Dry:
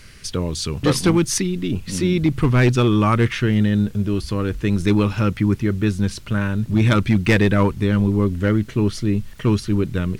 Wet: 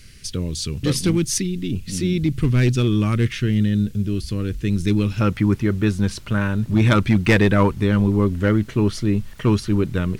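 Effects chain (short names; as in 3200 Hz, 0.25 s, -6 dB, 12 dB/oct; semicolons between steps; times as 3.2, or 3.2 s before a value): bell 910 Hz -14 dB 1.7 oct, from 5.21 s +2 dB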